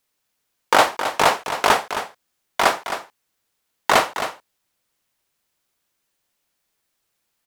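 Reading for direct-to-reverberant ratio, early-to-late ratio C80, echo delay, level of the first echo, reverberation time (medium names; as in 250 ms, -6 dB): no reverb, no reverb, 266 ms, -10.0 dB, no reverb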